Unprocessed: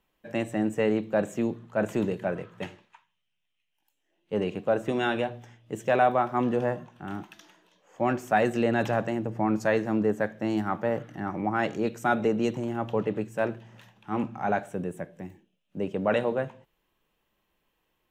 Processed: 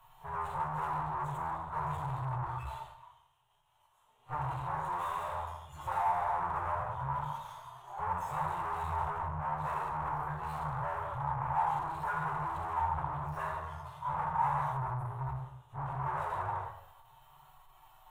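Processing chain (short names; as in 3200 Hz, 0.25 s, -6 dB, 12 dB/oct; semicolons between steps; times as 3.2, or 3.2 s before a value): median-filter separation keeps harmonic; resonant high shelf 2700 Hz +11.5 dB, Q 3; spectral noise reduction 11 dB; power-law curve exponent 0.5; formant-preserving pitch shift -6 st; pre-echo 39 ms -21 dB; plate-style reverb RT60 0.76 s, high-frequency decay 0.9×, DRR -1.5 dB; tube stage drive 29 dB, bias 0.55; EQ curve 150 Hz 0 dB, 220 Hz -27 dB, 580 Hz -7 dB, 940 Hz +14 dB, 4700 Hz -27 dB, 8500 Hz -14 dB; gain -5 dB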